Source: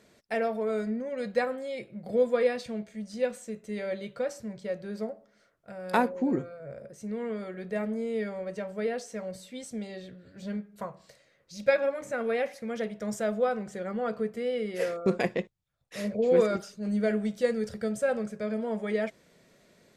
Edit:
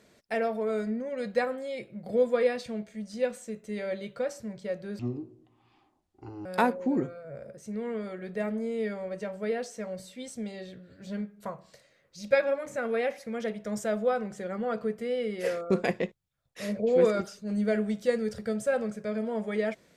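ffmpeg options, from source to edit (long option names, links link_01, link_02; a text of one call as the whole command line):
ffmpeg -i in.wav -filter_complex "[0:a]asplit=3[link_01][link_02][link_03];[link_01]atrim=end=4.994[link_04];[link_02]atrim=start=4.99:end=5.81,asetpts=PTS-STARTPTS,asetrate=24696,aresample=44100[link_05];[link_03]atrim=start=5.806[link_06];[link_04][link_05]acrossfade=duration=0.004:curve1=hsin:curve2=hsin[link_07];[link_07][link_06]acrossfade=duration=0.004:curve1=hsin:curve2=hsin" out.wav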